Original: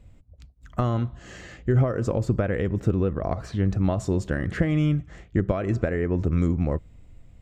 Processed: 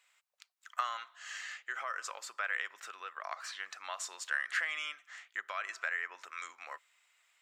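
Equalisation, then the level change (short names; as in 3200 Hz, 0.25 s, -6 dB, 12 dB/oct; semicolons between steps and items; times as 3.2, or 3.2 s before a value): HPF 1200 Hz 24 dB/oct; +2.5 dB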